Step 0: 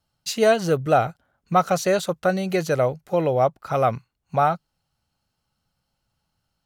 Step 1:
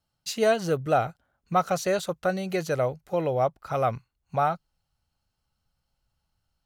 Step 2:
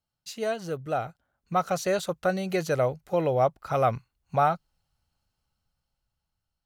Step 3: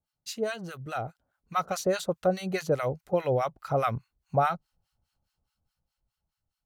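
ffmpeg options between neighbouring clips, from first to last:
-af "asubboost=boost=2.5:cutoff=95,volume=-4.5dB"
-af "dynaudnorm=f=340:g=9:m=11.5dB,volume=-7.5dB"
-filter_complex "[0:a]acrossover=split=930[a][b];[a]aeval=exprs='val(0)*(1-1/2+1/2*cos(2*PI*4.8*n/s))':c=same[c];[b]aeval=exprs='val(0)*(1-1/2-1/2*cos(2*PI*4.8*n/s))':c=same[d];[c][d]amix=inputs=2:normalize=0,volume=3dB"

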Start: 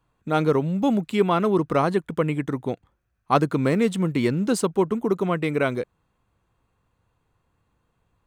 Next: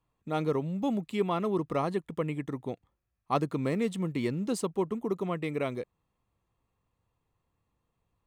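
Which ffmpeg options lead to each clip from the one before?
-af "bandreject=f=1.5k:w=5.8,volume=-8.5dB"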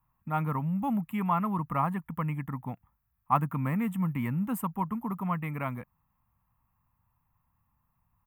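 -af "firequalizer=gain_entry='entry(170,0);entry(250,-4);entry(370,-22);entry(890,3);entry(2700,-8);entry(4200,-29);entry(13000,10)':delay=0.05:min_phase=1,volume=4.5dB"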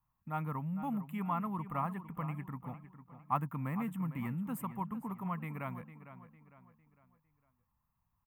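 -filter_complex "[0:a]asplit=2[a][b];[b]adelay=454,lowpass=f=4.7k:p=1,volume=-12.5dB,asplit=2[c][d];[d]adelay=454,lowpass=f=4.7k:p=1,volume=0.41,asplit=2[e][f];[f]adelay=454,lowpass=f=4.7k:p=1,volume=0.41,asplit=2[g][h];[h]adelay=454,lowpass=f=4.7k:p=1,volume=0.41[i];[a][c][e][g][i]amix=inputs=5:normalize=0,volume=-7.5dB"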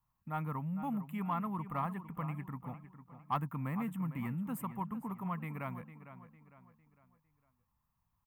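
-af "asoftclip=type=tanh:threshold=-22.5dB"

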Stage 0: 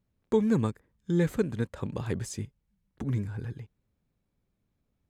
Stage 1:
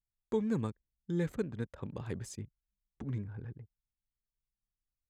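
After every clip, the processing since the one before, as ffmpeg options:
-af "anlmdn=0.0398,volume=-7.5dB"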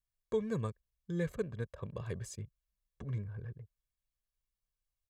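-af "aecho=1:1:1.8:0.64,volume=-2dB"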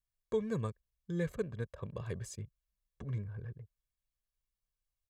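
-af anull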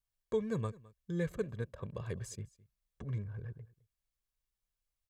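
-af "aecho=1:1:211:0.0794"

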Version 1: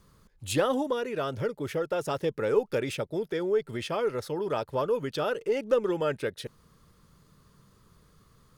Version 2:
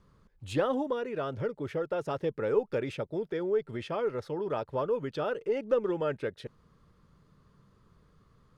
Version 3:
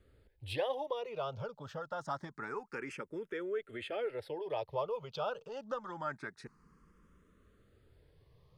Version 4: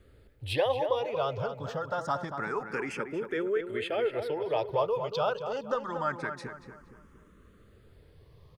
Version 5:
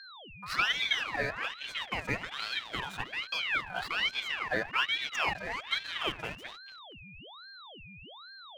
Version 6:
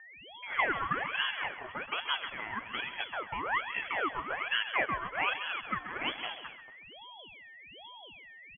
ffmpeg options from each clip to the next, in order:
-af "aemphasis=mode=reproduction:type=75fm,volume=-3dB"
-filter_complex "[0:a]acrossover=split=630[a][b];[a]acompressor=threshold=-43dB:ratio=4[c];[c][b]amix=inputs=2:normalize=0,asplit=2[d][e];[e]afreqshift=0.26[f];[d][f]amix=inputs=2:normalize=1,volume=1dB"
-filter_complex "[0:a]asplit=2[a][b];[b]adelay=233,lowpass=f=2.2k:p=1,volume=-7.5dB,asplit=2[c][d];[d]adelay=233,lowpass=f=2.2k:p=1,volume=0.43,asplit=2[e][f];[f]adelay=233,lowpass=f=2.2k:p=1,volume=0.43,asplit=2[g][h];[h]adelay=233,lowpass=f=2.2k:p=1,volume=0.43,asplit=2[i][j];[j]adelay=233,lowpass=f=2.2k:p=1,volume=0.43[k];[a][c][e][g][i][k]amix=inputs=6:normalize=0,volume=7.5dB"
-af "aeval=exprs='sgn(val(0))*max(abs(val(0))-0.00631,0)':c=same,aeval=exprs='val(0)+0.00562*sin(2*PI*1300*n/s)':c=same,aeval=exprs='val(0)*sin(2*PI*2000*n/s+2000*0.45/1.2*sin(2*PI*1.2*n/s))':c=same,volume=1.5dB"
-af "aecho=1:1:134|268|402:0.251|0.0628|0.0157,lowpass=f=2.9k:t=q:w=0.5098,lowpass=f=2.9k:t=q:w=0.6013,lowpass=f=2.9k:t=q:w=0.9,lowpass=f=2.9k:t=q:w=2.563,afreqshift=-3400"

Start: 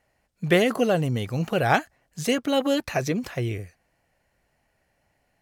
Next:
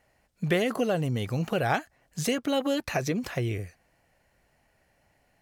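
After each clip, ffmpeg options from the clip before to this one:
-af "acompressor=threshold=-31dB:ratio=2,volume=2.5dB"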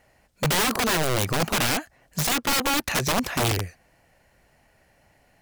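-filter_complex "[0:a]asplit=2[a][b];[b]alimiter=limit=-18.5dB:level=0:latency=1:release=126,volume=1dB[c];[a][c]amix=inputs=2:normalize=0,aeval=exprs='(mod(7.5*val(0)+1,2)-1)/7.5':c=same"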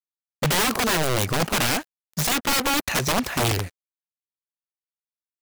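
-af "acrusher=bits=5:mix=0:aa=0.5,volume=1dB"

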